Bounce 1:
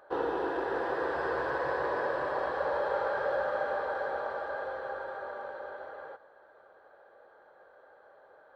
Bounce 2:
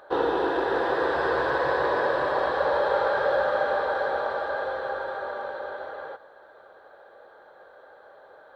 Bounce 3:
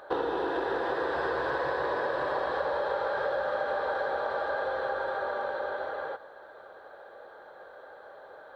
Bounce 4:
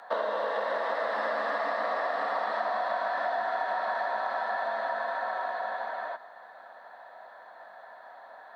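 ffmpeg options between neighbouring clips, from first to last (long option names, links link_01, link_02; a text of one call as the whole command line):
ffmpeg -i in.wav -af "equalizer=frequency=3700:width_type=o:width=0.37:gain=8,volume=7dB" out.wav
ffmpeg -i in.wav -af "acompressor=threshold=-29dB:ratio=6,volume=2dB" out.wav
ffmpeg -i in.wav -af "afreqshift=150" out.wav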